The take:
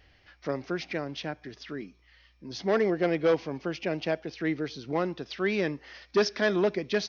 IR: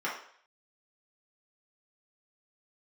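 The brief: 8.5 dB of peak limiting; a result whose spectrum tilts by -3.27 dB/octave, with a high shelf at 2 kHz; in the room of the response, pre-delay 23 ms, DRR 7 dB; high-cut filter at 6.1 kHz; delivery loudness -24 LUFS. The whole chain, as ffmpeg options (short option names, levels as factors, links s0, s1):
-filter_complex "[0:a]lowpass=6100,highshelf=f=2000:g=7,alimiter=limit=0.106:level=0:latency=1,asplit=2[s0][s1];[1:a]atrim=start_sample=2205,adelay=23[s2];[s1][s2]afir=irnorm=-1:irlink=0,volume=0.178[s3];[s0][s3]amix=inputs=2:normalize=0,volume=2.24"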